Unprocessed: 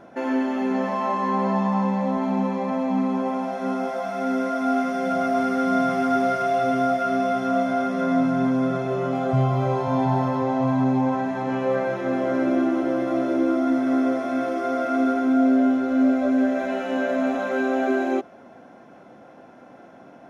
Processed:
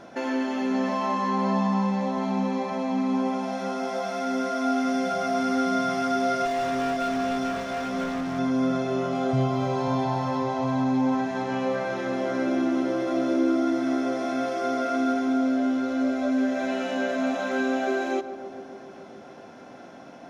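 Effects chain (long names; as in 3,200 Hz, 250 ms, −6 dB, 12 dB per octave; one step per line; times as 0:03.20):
parametric band 5,000 Hz +10.5 dB 1.7 octaves
in parallel at +2 dB: downward compressor, threshold −32 dBFS, peak gain reduction 15.5 dB
0:06.45–0:08.39: on the sum: gain into a clipping stage and back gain 19.5 dB
feedback echo with a low-pass in the loop 142 ms, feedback 84%, low-pass 980 Hz, level −11 dB
on a send at −20 dB: convolution reverb RT60 0.95 s, pre-delay 110 ms
on the sum: level −6.5 dB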